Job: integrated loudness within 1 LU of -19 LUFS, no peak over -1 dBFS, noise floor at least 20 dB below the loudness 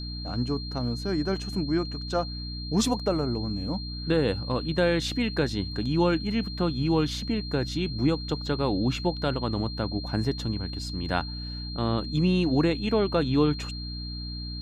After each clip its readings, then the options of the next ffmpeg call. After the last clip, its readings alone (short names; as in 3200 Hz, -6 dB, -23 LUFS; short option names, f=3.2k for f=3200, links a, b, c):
hum 60 Hz; harmonics up to 300 Hz; hum level -34 dBFS; steady tone 4200 Hz; tone level -38 dBFS; loudness -27.5 LUFS; peak -11.5 dBFS; loudness target -19.0 LUFS
-> -af "bandreject=f=60:t=h:w=6,bandreject=f=120:t=h:w=6,bandreject=f=180:t=h:w=6,bandreject=f=240:t=h:w=6,bandreject=f=300:t=h:w=6"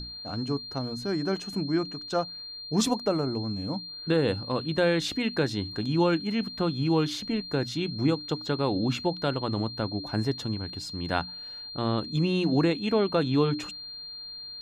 hum none; steady tone 4200 Hz; tone level -38 dBFS
-> -af "bandreject=f=4.2k:w=30"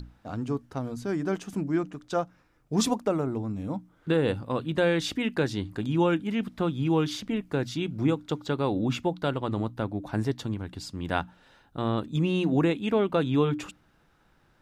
steady tone none; loudness -28.5 LUFS; peak -12.5 dBFS; loudness target -19.0 LUFS
-> -af "volume=9.5dB"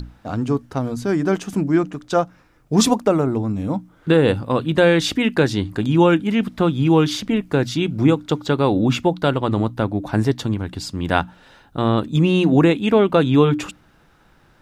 loudness -19.0 LUFS; peak -3.0 dBFS; noise floor -55 dBFS